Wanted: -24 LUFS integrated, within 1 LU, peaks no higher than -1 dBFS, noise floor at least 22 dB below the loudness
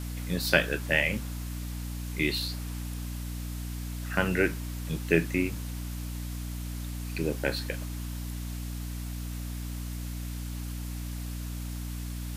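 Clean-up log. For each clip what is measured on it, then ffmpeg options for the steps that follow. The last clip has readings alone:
hum 60 Hz; highest harmonic 300 Hz; hum level -33 dBFS; noise floor -36 dBFS; noise floor target -54 dBFS; loudness -32.0 LUFS; peak level -5.0 dBFS; loudness target -24.0 LUFS
-> -af "bandreject=f=60:t=h:w=6,bandreject=f=120:t=h:w=6,bandreject=f=180:t=h:w=6,bandreject=f=240:t=h:w=6,bandreject=f=300:t=h:w=6"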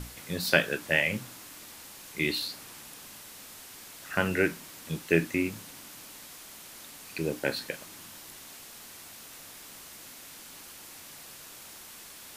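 hum not found; noise floor -48 dBFS; noise floor target -52 dBFS
-> -af "afftdn=nr=6:nf=-48"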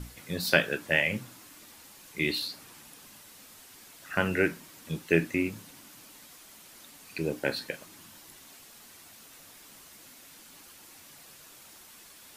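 noise floor -52 dBFS; loudness -29.5 LUFS; peak level -5.5 dBFS; loudness target -24.0 LUFS
-> -af "volume=1.88,alimiter=limit=0.891:level=0:latency=1"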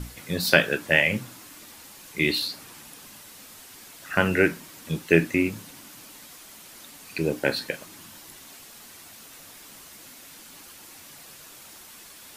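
loudness -24.0 LUFS; peak level -1.0 dBFS; noise floor -47 dBFS

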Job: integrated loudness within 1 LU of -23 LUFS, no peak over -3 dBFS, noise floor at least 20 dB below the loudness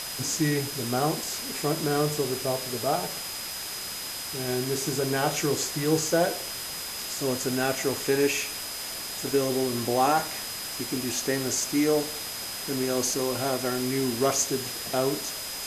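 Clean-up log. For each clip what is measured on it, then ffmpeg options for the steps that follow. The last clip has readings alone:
steady tone 5 kHz; tone level -38 dBFS; noise floor -35 dBFS; noise floor target -47 dBFS; loudness -27.0 LUFS; peak level -10.0 dBFS; loudness target -23.0 LUFS
-> -af "bandreject=f=5000:w=30"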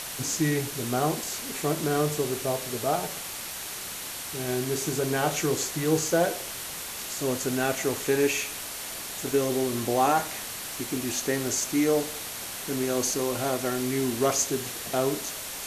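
steady tone not found; noise floor -37 dBFS; noise floor target -48 dBFS
-> -af "afftdn=nr=11:nf=-37"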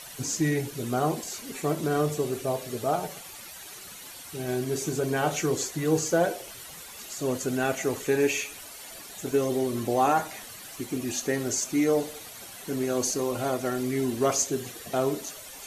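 noise floor -44 dBFS; noise floor target -48 dBFS
-> -af "afftdn=nr=6:nf=-44"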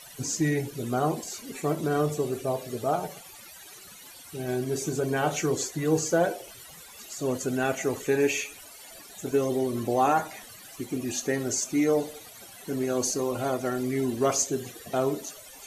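noise floor -48 dBFS; loudness -28.0 LUFS; peak level -10.5 dBFS; loudness target -23.0 LUFS
-> -af "volume=1.78"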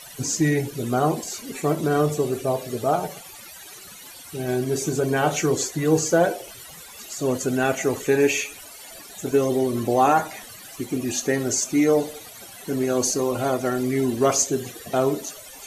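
loudness -23.0 LUFS; peak level -5.5 dBFS; noise floor -43 dBFS

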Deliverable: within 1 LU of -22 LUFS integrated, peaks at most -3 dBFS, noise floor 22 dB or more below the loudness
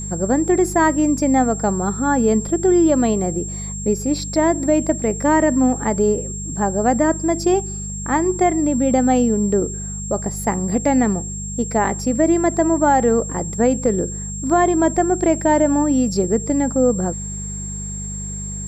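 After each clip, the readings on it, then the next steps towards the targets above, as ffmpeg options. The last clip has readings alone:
hum 50 Hz; highest harmonic 200 Hz; hum level -27 dBFS; steady tone 7.5 kHz; tone level -29 dBFS; loudness -18.5 LUFS; peak level -4.5 dBFS; loudness target -22.0 LUFS
-> -af "bandreject=f=50:t=h:w=4,bandreject=f=100:t=h:w=4,bandreject=f=150:t=h:w=4,bandreject=f=200:t=h:w=4"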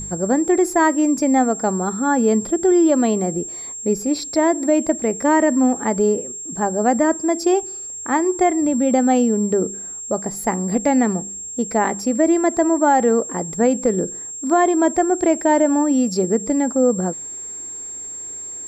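hum not found; steady tone 7.5 kHz; tone level -29 dBFS
-> -af "bandreject=f=7500:w=30"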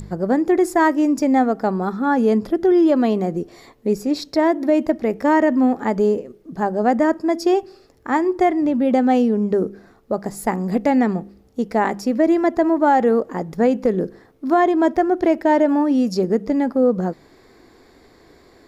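steady tone not found; loudness -19.0 LUFS; peak level -5.5 dBFS; loudness target -22.0 LUFS
-> -af "volume=0.708"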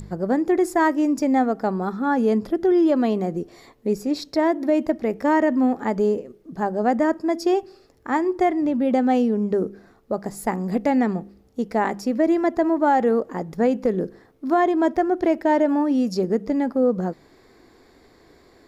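loudness -22.0 LUFS; peak level -8.5 dBFS; noise floor -55 dBFS

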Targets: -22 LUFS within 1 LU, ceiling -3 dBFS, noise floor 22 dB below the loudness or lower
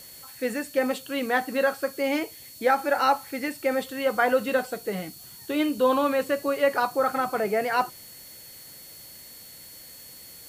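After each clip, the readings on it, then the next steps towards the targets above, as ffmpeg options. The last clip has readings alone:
steady tone 4.4 kHz; tone level -50 dBFS; noise floor -46 dBFS; noise floor target -48 dBFS; loudness -26.0 LUFS; peak level -8.5 dBFS; loudness target -22.0 LUFS
-> -af "bandreject=f=4400:w=30"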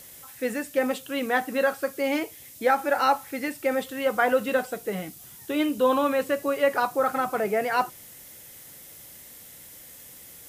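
steady tone not found; noise floor -47 dBFS; noise floor target -48 dBFS
-> -af "afftdn=nr=6:nf=-47"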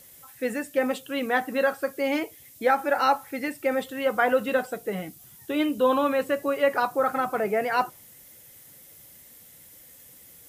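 noise floor -51 dBFS; loudness -26.0 LUFS; peak level -8.5 dBFS; loudness target -22.0 LUFS
-> -af "volume=1.58"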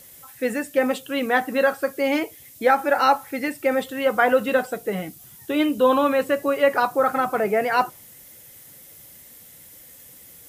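loudness -22.0 LUFS; peak level -4.5 dBFS; noise floor -47 dBFS

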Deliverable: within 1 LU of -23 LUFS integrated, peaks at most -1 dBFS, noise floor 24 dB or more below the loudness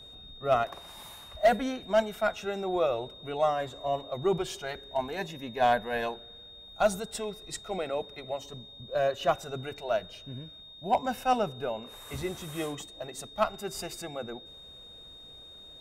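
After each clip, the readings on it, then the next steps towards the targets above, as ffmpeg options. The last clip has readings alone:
steady tone 3.7 kHz; tone level -47 dBFS; loudness -31.0 LUFS; peak level -15.0 dBFS; loudness target -23.0 LUFS
-> -af "bandreject=f=3700:w=30"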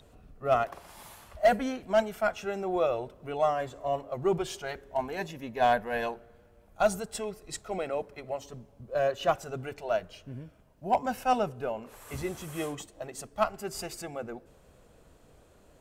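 steady tone not found; loudness -31.0 LUFS; peak level -15.0 dBFS; loudness target -23.0 LUFS
-> -af "volume=2.51"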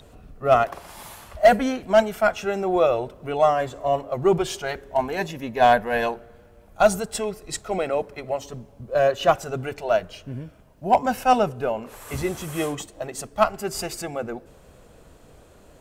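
loudness -23.0 LUFS; peak level -7.0 dBFS; noise floor -51 dBFS

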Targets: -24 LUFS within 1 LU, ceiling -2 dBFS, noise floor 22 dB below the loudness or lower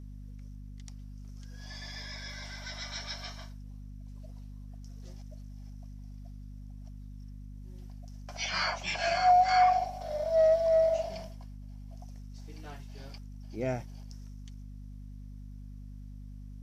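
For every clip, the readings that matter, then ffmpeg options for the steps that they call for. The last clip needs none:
hum 50 Hz; highest harmonic 250 Hz; hum level -42 dBFS; loudness -29.0 LUFS; peak level -13.5 dBFS; loudness target -24.0 LUFS
-> -af "bandreject=f=50:t=h:w=6,bandreject=f=100:t=h:w=6,bandreject=f=150:t=h:w=6,bandreject=f=200:t=h:w=6,bandreject=f=250:t=h:w=6"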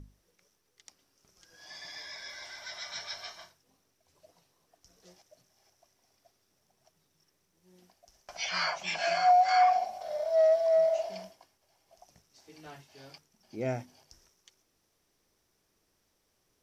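hum not found; loudness -28.5 LUFS; peak level -14.0 dBFS; loudness target -24.0 LUFS
-> -af "volume=1.68"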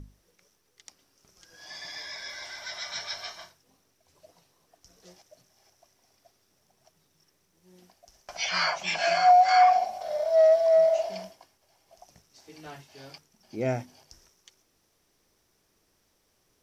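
loudness -24.5 LUFS; peak level -9.5 dBFS; noise floor -71 dBFS

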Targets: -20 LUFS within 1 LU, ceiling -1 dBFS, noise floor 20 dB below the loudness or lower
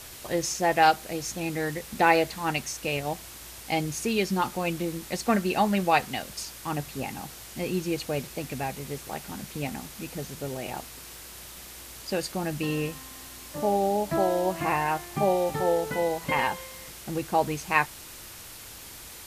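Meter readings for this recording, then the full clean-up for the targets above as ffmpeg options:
noise floor -44 dBFS; noise floor target -48 dBFS; loudness -28.0 LUFS; peak level -5.0 dBFS; loudness target -20.0 LUFS
-> -af "afftdn=nr=6:nf=-44"
-af "volume=2.51,alimiter=limit=0.891:level=0:latency=1"

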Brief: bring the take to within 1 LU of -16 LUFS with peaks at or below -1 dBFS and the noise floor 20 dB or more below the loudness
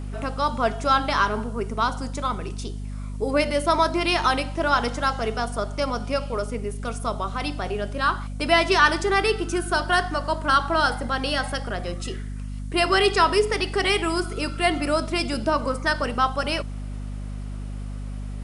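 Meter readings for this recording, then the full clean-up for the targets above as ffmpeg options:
hum 50 Hz; highest harmonic 250 Hz; hum level -29 dBFS; loudness -23.5 LUFS; peak level -3.5 dBFS; loudness target -16.0 LUFS
-> -af "bandreject=f=50:t=h:w=6,bandreject=f=100:t=h:w=6,bandreject=f=150:t=h:w=6,bandreject=f=200:t=h:w=6,bandreject=f=250:t=h:w=6"
-af "volume=2.37,alimiter=limit=0.891:level=0:latency=1"

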